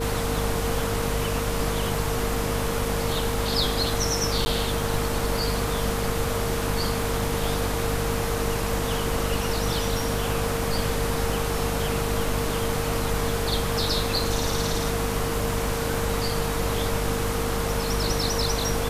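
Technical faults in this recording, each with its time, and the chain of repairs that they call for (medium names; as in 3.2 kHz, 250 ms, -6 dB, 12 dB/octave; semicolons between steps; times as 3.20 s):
crackle 21 per s -33 dBFS
hum 50 Hz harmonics 5 -30 dBFS
whine 460 Hz -30 dBFS
4.45–4.46 s: dropout 10 ms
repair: de-click; de-hum 50 Hz, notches 5; band-stop 460 Hz, Q 30; interpolate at 4.45 s, 10 ms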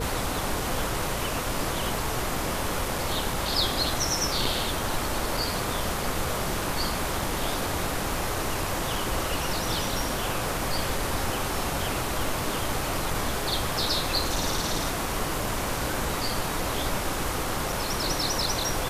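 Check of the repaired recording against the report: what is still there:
nothing left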